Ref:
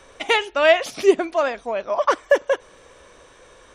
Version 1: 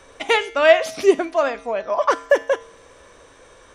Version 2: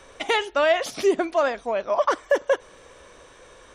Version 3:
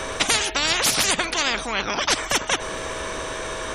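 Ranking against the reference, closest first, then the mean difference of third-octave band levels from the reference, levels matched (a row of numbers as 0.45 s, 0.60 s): 1, 2, 3; 1.0 dB, 2.0 dB, 16.0 dB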